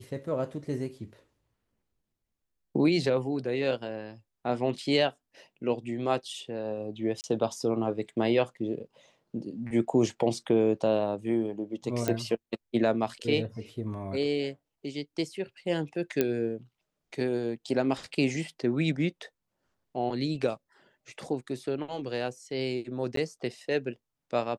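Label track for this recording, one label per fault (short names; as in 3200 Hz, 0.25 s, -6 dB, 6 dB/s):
7.210000	7.240000	gap 29 ms
12.080000	12.080000	pop -13 dBFS
16.210000	16.210000	pop -11 dBFS
23.160000	23.170000	gap 13 ms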